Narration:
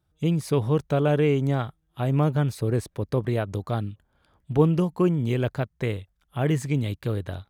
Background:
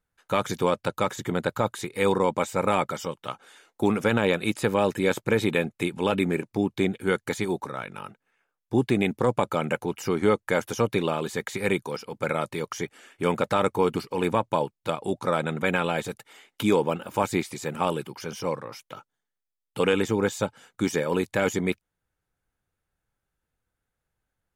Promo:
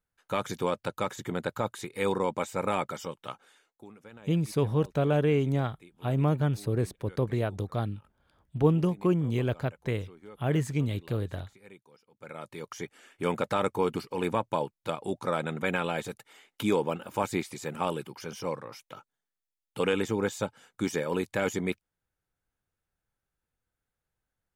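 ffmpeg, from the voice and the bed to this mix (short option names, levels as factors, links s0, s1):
-filter_complex "[0:a]adelay=4050,volume=0.668[s0];[1:a]volume=7.08,afade=t=out:st=3.32:d=0.53:silence=0.0841395,afade=t=in:st=12.13:d=0.92:silence=0.0749894[s1];[s0][s1]amix=inputs=2:normalize=0"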